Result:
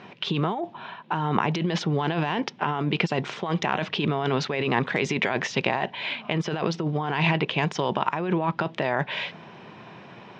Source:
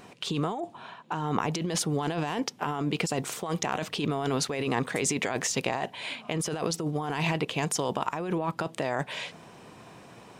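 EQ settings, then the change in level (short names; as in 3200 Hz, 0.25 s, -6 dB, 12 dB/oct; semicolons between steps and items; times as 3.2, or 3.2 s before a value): air absorption 99 m; speaker cabinet 140–4900 Hz, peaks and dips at 280 Hz -7 dB, 480 Hz -6 dB, 710 Hz -4 dB, 1200 Hz -4 dB, 4500 Hz -5 dB; +8.0 dB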